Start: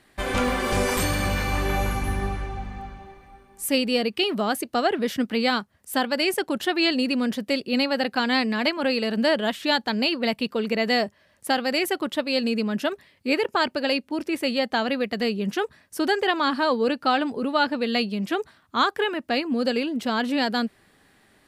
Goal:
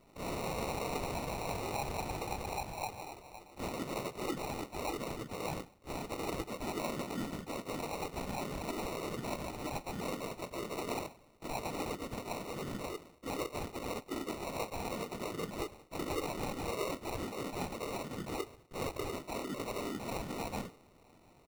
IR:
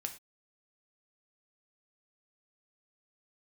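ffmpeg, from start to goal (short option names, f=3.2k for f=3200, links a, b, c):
-filter_complex "[0:a]alimiter=limit=-21.5dB:level=0:latency=1:release=90,afreqshift=-18,lowshelf=f=470:g=-9.5,asoftclip=type=tanh:threshold=-32dB,aecho=1:1:2.6:0.35,asplit=2[a][b];[1:a]atrim=start_sample=2205,adelay=21[c];[b][c]afir=irnorm=-1:irlink=0,volume=-6.5dB[d];[a][d]amix=inputs=2:normalize=0,asplit=2[e][f];[f]asetrate=58866,aresample=44100,atempo=0.749154,volume=-6dB[g];[e][g]amix=inputs=2:normalize=0,asplit=2[h][i];[i]adelay=73,lowpass=f=1.4k:p=1,volume=-18.5dB,asplit=2[j][k];[k]adelay=73,lowpass=f=1.4k:p=1,volume=0.5,asplit=2[l][m];[m]adelay=73,lowpass=f=1.4k:p=1,volume=0.5,asplit=2[n][o];[o]adelay=73,lowpass=f=1.4k:p=1,volume=0.5[p];[h][j][l][n][p]amix=inputs=5:normalize=0,afftfilt=real='hypot(re,im)*cos(2*PI*random(0))':imag='hypot(re,im)*sin(2*PI*random(1))':win_size=512:overlap=0.75,acrusher=samples=27:mix=1:aa=0.000001,volume=3dB"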